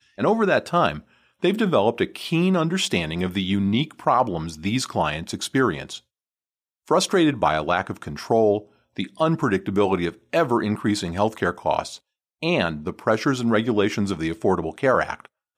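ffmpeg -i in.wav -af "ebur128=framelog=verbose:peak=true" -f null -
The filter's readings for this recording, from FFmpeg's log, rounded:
Integrated loudness:
  I:         -22.6 LUFS
  Threshold: -32.9 LUFS
Loudness range:
  LRA:         2.1 LU
  Threshold: -43.2 LUFS
  LRA low:   -24.1 LUFS
  LRA high:  -22.1 LUFS
True peak:
  Peak:       -4.6 dBFS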